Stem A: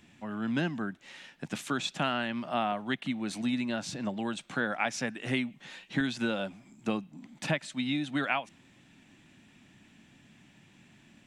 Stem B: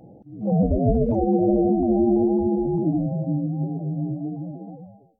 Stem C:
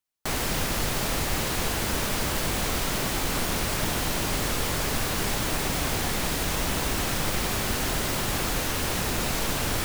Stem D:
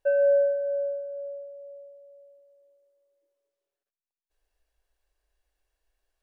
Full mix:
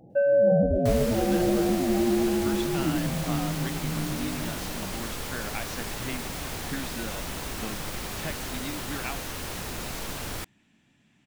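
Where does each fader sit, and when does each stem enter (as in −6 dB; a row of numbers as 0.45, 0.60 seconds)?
−6.5, −5.0, −7.5, +0.5 decibels; 0.75, 0.00, 0.60, 0.10 seconds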